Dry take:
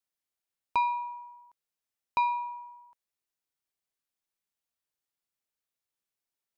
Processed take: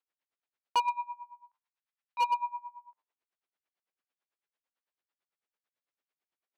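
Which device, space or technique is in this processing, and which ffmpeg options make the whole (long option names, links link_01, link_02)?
helicopter radio: -filter_complex "[0:a]bandreject=frequency=101.8:width_type=h:width=4,bandreject=frequency=203.6:width_type=h:width=4,bandreject=frequency=305.4:width_type=h:width=4,bandreject=frequency=407.2:width_type=h:width=4,bandreject=frequency=509:width_type=h:width=4,bandreject=frequency=610.8:width_type=h:width=4,bandreject=frequency=712.6:width_type=h:width=4,bandreject=frequency=814.4:width_type=h:width=4,bandreject=frequency=916.2:width_type=h:width=4,bandreject=frequency=1018:width_type=h:width=4,bandreject=frequency=1119.8:width_type=h:width=4,bandreject=frequency=1221.6:width_type=h:width=4,bandreject=frequency=1323.4:width_type=h:width=4,bandreject=frequency=1425.2:width_type=h:width=4,bandreject=frequency=1527:width_type=h:width=4,bandreject=frequency=1628.8:width_type=h:width=4,bandreject=frequency=1730.6:width_type=h:width=4,bandreject=frequency=1832.4:width_type=h:width=4,bandreject=frequency=1934.2:width_type=h:width=4,bandreject=frequency=2036:width_type=h:width=4,bandreject=frequency=2137.8:width_type=h:width=4,bandreject=frequency=2239.6:width_type=h:width=4,bandreject=frequency=2341.4:width_type=h:width=4,bandreject=frequency=2443.2:width_type=h:width=4,bandreject=frequency=2545:width_type=h:width=4,bandreject=frequency=2646.8:width_type=h:width=4,bandreject=frequency=2748.6:width_type=h:width=4,bandreject=frequency=2850.4:width_type=h:width=4,bandreject=frequency=2952.2:width_type=h:width=4,bandreject=frequency=3054:width_type=h:width=4,asplit=3[link_01][link_02][link_03];[link_01]afade=type=out:start_time=0.86:duration=0.02[link_04];[link_02]highpass=1000,afade=type=in:start_time=0.86:duration=0.02,afade=type=out:start_time=2.21:duration=0.02[link_05];[link_03]afade=type=in:start_time=2.21:duration=0.02[link_06];[link_04][link_05][link_06]amix=inputs=3:normalize=0,highpass=300,lowpass=2800,aeval=exprs='val(0)*pow(10,-22*(0.5-0.5*cos(2*PI*9*n/s))/20)':channel_layout=same,asoftclip=type=hard:threshold=-29.5dB,volume=7.5dB"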